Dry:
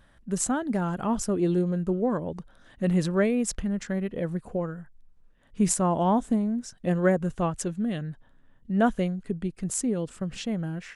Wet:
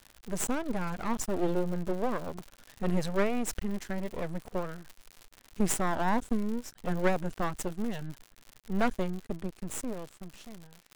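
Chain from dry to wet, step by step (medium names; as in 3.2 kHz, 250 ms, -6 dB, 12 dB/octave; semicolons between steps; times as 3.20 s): fade out at the end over 1.80 s; crackle 220 per s -36 dBFS; half-wave rectifier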